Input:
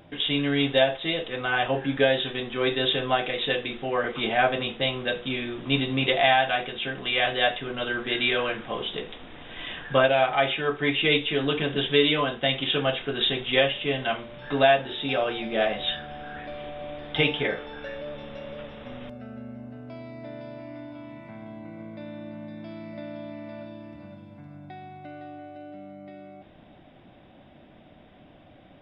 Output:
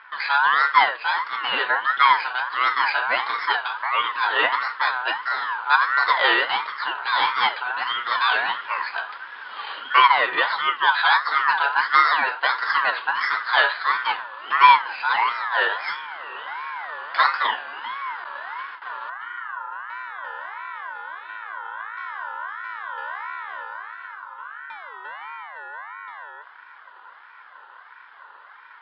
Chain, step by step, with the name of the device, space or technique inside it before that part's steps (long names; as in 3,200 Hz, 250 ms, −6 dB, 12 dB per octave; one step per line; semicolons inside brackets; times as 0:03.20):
0:18.24–0:18.82: noise gate with hold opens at −31 dBFS
voice changer toy (ring modulator whose carrier an LFO sweeps 1,400 Hz, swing 20%, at 1.5 Hz; loudspeaker in its box 600–3,500 Hz, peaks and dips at 640 Hz −5 dB, 1,000 Hz +8 dB, 1,500 Hz +6 dB, 2,200 Hz −5 dB, 3,100 Hz +3 dB)
level +5.5 dB